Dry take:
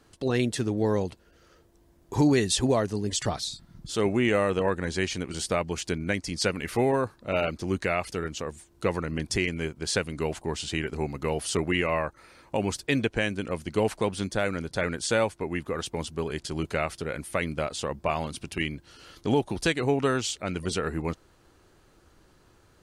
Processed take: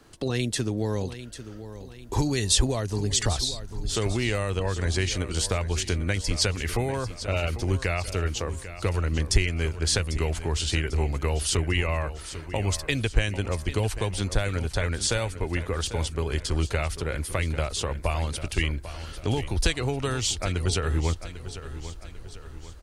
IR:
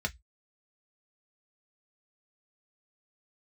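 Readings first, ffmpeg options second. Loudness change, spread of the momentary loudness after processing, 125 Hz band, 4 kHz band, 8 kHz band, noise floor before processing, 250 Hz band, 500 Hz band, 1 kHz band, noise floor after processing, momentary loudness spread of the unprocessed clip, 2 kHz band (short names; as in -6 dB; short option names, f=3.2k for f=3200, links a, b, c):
+1.0 dB, 10 LU, +6.5 dB, +4.5 dB, +5.0 dB, -60 dBFS, -3.5 dB, -3.0 dB, -2.5 dB, -41 dBFS, 8 LU, 0.0 dB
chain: -filter_complex "[0:a]asubboost=boost=9.5:cutoff=57,acrossover=split=140|3000[a][b][c];[b]acompressor=threshold=-32dB:ratio=6[d];[a][d][c]amix=inputs=3:normalize=0,aecho=1:1:796|1592|2388|3184|3980:0.224|0.103|0.0474|0.0218|0.01,volume=5dB"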